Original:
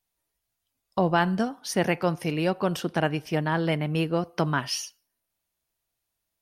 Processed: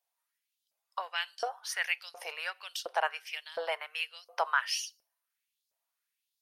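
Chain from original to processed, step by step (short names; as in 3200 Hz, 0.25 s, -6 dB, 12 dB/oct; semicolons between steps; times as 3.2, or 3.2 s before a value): steep high-pass 430 Hz 48 dB/oct; LFO high-pass saw up 1.4 Hz 560–5000 Hz; gain -5 dB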